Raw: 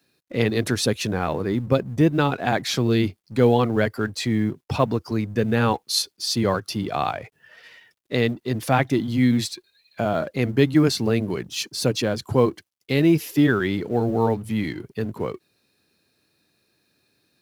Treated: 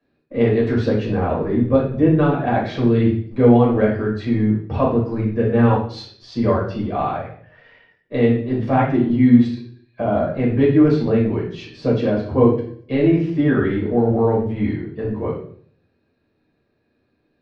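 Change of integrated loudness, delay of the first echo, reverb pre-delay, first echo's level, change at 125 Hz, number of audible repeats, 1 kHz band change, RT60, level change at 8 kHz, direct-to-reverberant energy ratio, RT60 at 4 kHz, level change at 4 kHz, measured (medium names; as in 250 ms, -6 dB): +4.5 dB, no echo, 5 ms, no echo, +4.0 dB, no echo, +2.5 dB, 0.55 s, under -20 dB, -5.0 dB, 0.50 s, -11.0 dB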